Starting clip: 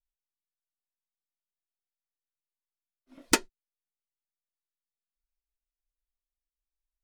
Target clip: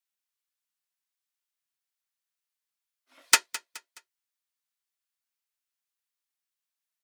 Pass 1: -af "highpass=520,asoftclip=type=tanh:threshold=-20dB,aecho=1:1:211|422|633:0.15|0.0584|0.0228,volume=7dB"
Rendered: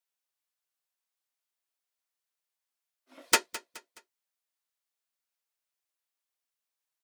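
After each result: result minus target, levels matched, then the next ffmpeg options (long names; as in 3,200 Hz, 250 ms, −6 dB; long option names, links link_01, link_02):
500 Hz band +11.0 dB; soft clipping: distortion +11 dB
-af "highpass=1100,asoftclip=type=tanh:threshold=-20dB,aecho=1:1:211|422|633:0.15|0.0584|0.0228,volume=7dB"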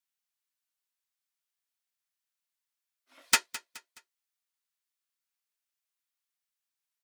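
soft clipping: distortion +11 dB
-af "highpass=1100,asoftclip=type=tanh:threshold=-10dB,aecho=1:1:211|422|633:0.15|0.0584|0.0228,volume=7dB"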